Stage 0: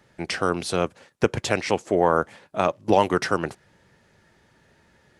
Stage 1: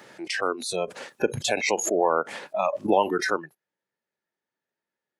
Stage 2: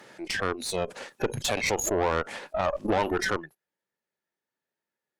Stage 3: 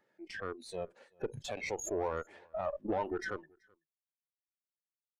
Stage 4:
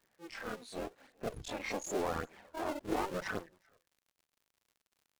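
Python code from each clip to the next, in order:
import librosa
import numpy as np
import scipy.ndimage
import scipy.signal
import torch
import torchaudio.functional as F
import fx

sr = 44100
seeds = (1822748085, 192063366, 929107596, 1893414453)

y1 = scipy.signal.sosfilt(scipy.signal.butter(2, 270.0, 'highpass', fs=sr, output='sos'), x)
y1 = fx.noise_reduce_blind(y1, sr, reduce_db=26)
y1 = fx.pre_swell(y1, sr, db_per_s=51.0)
y1 = F.gain(torch.from_numpy(y1), -2.0).numpy()
y2 = fx.tube_stage(y1, sr, drive_db=21.0, bias=0.7)
y2 = F.gain(torch.from_numpy(y2), 2.5).numpy()
y3 = y2 + 10.0 ** (-19.5 / 20.0) * np.pad(y2, (int(380 * sr / 1000.0), 0))[:len(y2)]
y3 = fx.spectral_expand(y3, sr, expansion=1.5)
y3 = F.gain(torch.from_numpy(y3), -8.5).numpy()
y4 = fx.cycle_switch(y3, sr, every=2, mode='muted')
y4 = fx.chorus_voices(y4, sr, voices=2, hz=0.44, base_ms=26, depth_ms=2.1, mix_pct=65)
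y4 = fx.dmg_crackle(y4, sr, seeds[0], per_s=72.0, level_db=-61.0)
y4 = F.gain(torch.from_numpy(y4), 5.0).numpy()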